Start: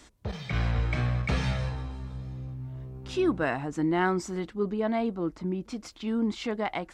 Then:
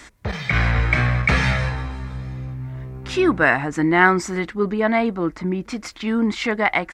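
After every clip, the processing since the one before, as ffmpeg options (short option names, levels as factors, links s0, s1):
-af "firequalizer=gain_entry='entry(440,0);entry(2000,11);entry(2900,2)':delay=0.05:min_phase=1,volume=2.37"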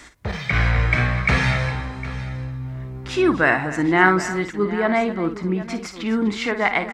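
-af "aecho=1:1:54|251|758:0.316|0.178|0.168,volume=0.891"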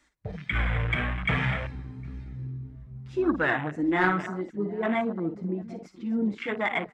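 -af "asoftclip=type=hard:threshold=0.316,flanger=delay=3.3:depth=3.6:regen=-17:speed=1.8:shape=sinusoidal,afwtdn=0.0447,volume=0.668"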